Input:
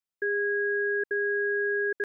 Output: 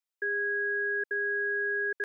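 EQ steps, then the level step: HPF 290 Hz; low shelf 480 Hz -9.5 dB; 0.0 dB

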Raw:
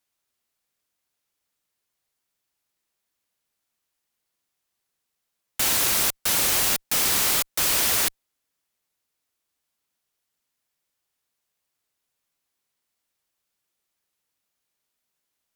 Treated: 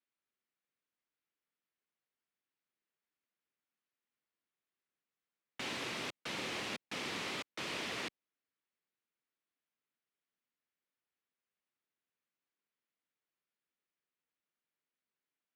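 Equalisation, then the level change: bell 770 Hz -7 dB 1.4 oct; dynamic EQ 1500 Hz, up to -6 dB, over -47 dBFS, Q 2.1; BPF 180–2300 Hz; -5.5 dB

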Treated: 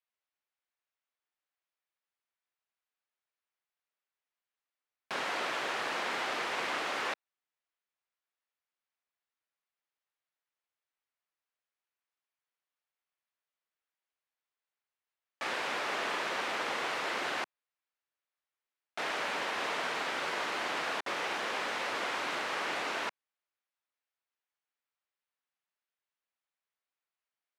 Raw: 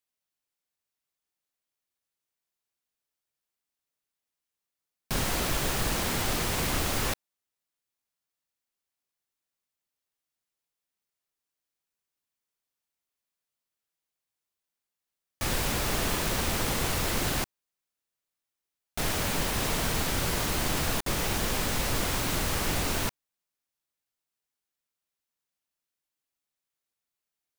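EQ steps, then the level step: BPF 370–2000 Hz; tilt +3 dB/oct; 0.0 dB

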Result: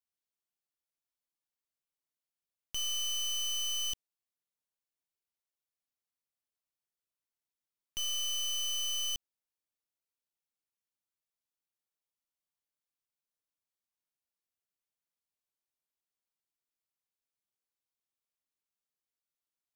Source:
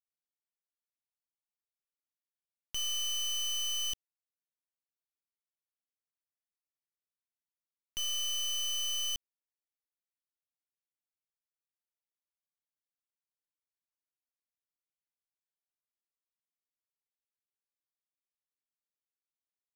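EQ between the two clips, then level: bell 1800 Hz -3 dB 0.61 oct; 0.0 dB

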